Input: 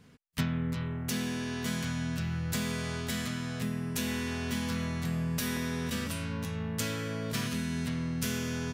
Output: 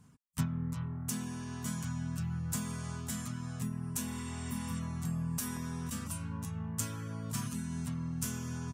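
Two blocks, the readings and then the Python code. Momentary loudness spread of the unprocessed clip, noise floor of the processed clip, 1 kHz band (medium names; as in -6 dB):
3 LU, -43 dBFS, -4.5 dB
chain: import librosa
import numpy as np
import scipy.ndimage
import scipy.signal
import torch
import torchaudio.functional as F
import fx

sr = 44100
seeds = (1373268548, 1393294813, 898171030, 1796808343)

y = fx.graphic_eq_10(x, sr, hz=(125, 500, 1000, 2000, 4000, 8000), db=(5, -10, 6, -8, -8, 8))
y = fx.dereverb_blind(y, sr, rt60_s=0.61)
y = fx.spec_repair(y, sr, seeds[0], start_s=4.13, length_s=0.64, low_hz=1300.0, high_hz=9100.0, source='before')
y = y * 10.0 ** (-3.5 / 20.0)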